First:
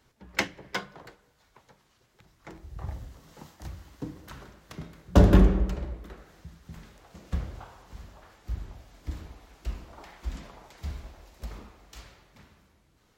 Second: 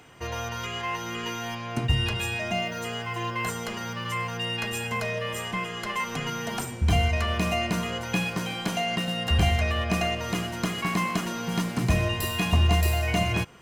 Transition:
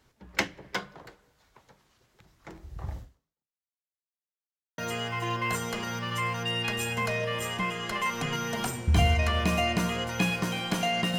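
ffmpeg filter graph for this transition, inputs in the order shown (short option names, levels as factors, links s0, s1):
-filter_complex "[0:a]apad=whole_dur=11.18,atrim=end=11.18,asplit=2[s0][s1];[s0]atrim=end=3.81,asetpts=PTS-STARTPTS,afade=t=out:st=2.99:d=0.82:c=exp[s2];[s1]atrim=start=3.81:end=4.78,asetpts=PTS-STARTPTS,volume=0[s3];[1:a]atrim=start=2.72:end=9.12,asetpts=PTS-STARTPTS,afade=t=in:d=0.004:c=hsin[s4];[s2][s3][s4]concat=n=3:v=0:a=1"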